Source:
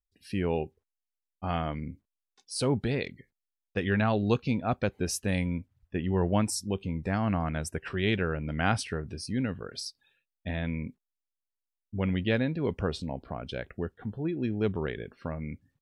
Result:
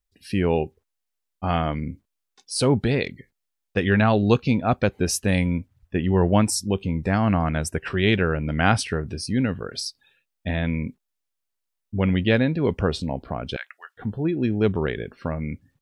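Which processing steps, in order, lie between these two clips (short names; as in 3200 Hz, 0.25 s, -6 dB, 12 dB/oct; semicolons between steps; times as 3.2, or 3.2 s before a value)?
13.56–13.97 HPF 1100 Hz 24 dB/oct; gain +7.5 dB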